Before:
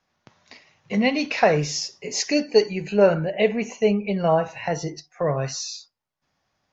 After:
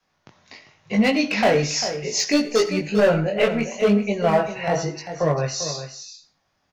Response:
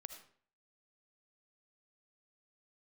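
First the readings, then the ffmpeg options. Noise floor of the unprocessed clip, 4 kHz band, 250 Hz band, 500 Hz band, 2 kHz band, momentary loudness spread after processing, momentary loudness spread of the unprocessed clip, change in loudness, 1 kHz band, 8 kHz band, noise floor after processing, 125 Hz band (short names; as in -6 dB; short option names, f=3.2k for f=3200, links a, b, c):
-76 dBFS, +3.0 dB, +3.0 dB, +0.5 dB, +2.5 dB, 9 LU, 9 LU, +1.5 dB, +1.0 dB, n/a, -71 dBFS, +2.0 dB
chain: -filter_complex "[0:a]adynamicequalizer=threshold=0.02:dfrequency=110:dqfactor=0.73:tfrequency=110:tqfactor=0.73:attack=5:release=100:ratio=0.375:range=2.5:mode=cutabove:tftype=bell,volume=15.5dB,asoftclip=hard,volume=-15.5dB,flanger=delay=18.5:depth=3.7:speed=0.97,aecho=1:1:396:0.299,asplit=2[a][b];[1:a]atrim=start_sample=2205,afade=t=out:st=0.24:d=0.01,atrim=end_sample=11025[c];[b][c]afir=irnorm=-1:irlink=0,volume=0.5dB[d];[a][d]amix=inputs=2:normalize=0,volume=2dB"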